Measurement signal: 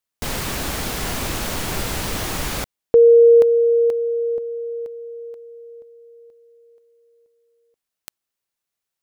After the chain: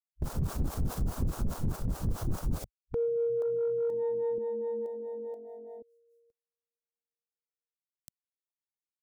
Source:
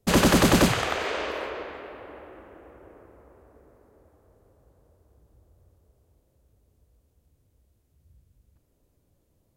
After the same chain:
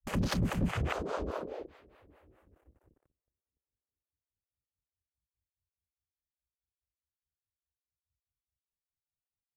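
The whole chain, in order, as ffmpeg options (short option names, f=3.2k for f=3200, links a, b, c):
-filter_complex "[0:a]agate=range=-29dB:threshold=-50dB:ratio=16:release=28:detection=rms,afwtdn=0.0398,bass=f=250:g=14,treble=f=4k:g=12,acompressor=threshold=-22dB:ratio=12:attack=3.7:release=64:knee=6:detection=rms,acrossover=split=440[a][b];[a]aeval=exprs='val(0)*(1-1/2+1/2*cos(2*PI*4.8*n/s))':c=same[c];[b]aeval=exprs='val(0)*(1-1/2-1/2*cos(2*PI*4.8*n/s))':c=same[d];[c][d]amix=inputs=2:normalize=0,volume=23dB,asoftclip=hard,volume=-23dB"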